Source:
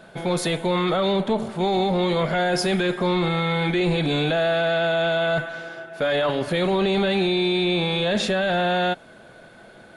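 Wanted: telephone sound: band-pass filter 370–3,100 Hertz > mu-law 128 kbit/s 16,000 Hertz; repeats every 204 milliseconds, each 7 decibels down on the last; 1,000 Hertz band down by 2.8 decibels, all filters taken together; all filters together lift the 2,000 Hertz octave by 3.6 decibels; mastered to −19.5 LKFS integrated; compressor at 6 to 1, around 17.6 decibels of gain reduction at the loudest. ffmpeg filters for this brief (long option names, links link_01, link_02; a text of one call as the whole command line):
ffmpeg -i in.wav -af "equalizer=frequency=1000:width_type=o:gain=-6,equalizer=frequency=2000:width_type=o:gain=8,acompressor=threshold=-38dB:ratio=6,highpass=370,lowpass=3100,aecho=1:1:204|408|612|816|1020:0.447|0.201|0.0905|0.0407|0.0183,volume=21dB" -ar 16000 -c:a pcm_mulaw out.wav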